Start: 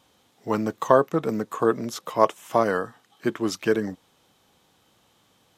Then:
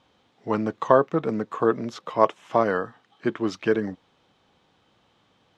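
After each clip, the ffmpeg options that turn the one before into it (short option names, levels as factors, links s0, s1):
-af "lowpass=3800"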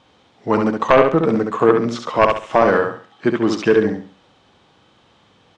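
-filter_complex "[0:a]aeval=exprs='0.841*sin(PI/2*2.24*val(0)/0.841)':c=same,asplit=2[s0][s1];[s1]aecho=0:1:68|136|204|272:0.596|0.185|0.0572|0.0177[s2];[s0][s2]amix=inputs=2:normalize=0,aresample=22050,aresample=44100,volume=0.708"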